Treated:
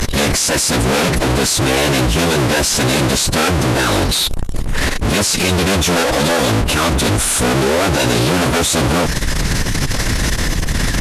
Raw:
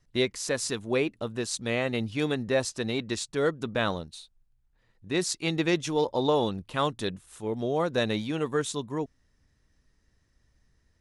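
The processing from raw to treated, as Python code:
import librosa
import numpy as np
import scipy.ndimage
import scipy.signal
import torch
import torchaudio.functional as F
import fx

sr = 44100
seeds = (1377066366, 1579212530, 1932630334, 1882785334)

y = fx.power_curve(x, sr, exponent=0.5)
y = fx.fuzz(y, sr, gain_db=51.0, gate_db=-59.0)
y = fx.pitch_keep_formants(y, sr, semitones=-10.0)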